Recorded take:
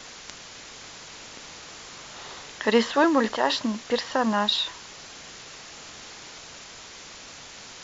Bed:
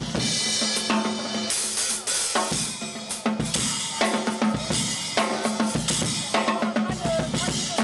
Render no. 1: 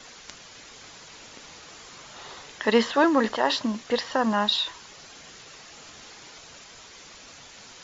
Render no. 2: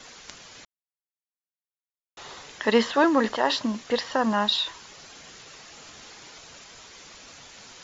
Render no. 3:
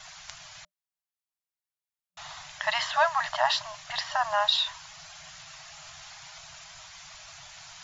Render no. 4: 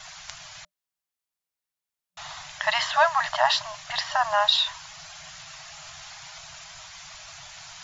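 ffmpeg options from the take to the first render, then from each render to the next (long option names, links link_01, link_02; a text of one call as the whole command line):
ffmpeg -i in.wav -af "afftdn=noise_reduction=6:noise_floor=-44" out.wav
ffmpeg -i in.wav -filter_complex "[0:a]asplit=3[link_01][link_02][link_03];[link_01]atrim=end=0.65,asetpts=PTS-STARTPTS,afade=type=out:start_time=0.646:duration=0.004:curve=hsin[link_04];[link_02]atrim=start=0.65:end=2.17,asetpts=PTS-STARTPTS,volume=0[link_05];[link_03]atrim=start=2.17,asetpts=PTS-STARTPTS,afade=type=in:duration=0.004:curve=hsin[link_06];[link_04][link_05][link_06]concat=n=3:v=0:a=1" out.wav
ffmpeg -i in.wav -af "afftfilt=real='re*(1-between(b*sr/4096,180,600))':imag='im*(1-between(b*sr/4096,180,600))':win_size=4096:overlap=0.75" out.wav
ffmpeg -i in.wav -af "volume=3.5dB" out.wav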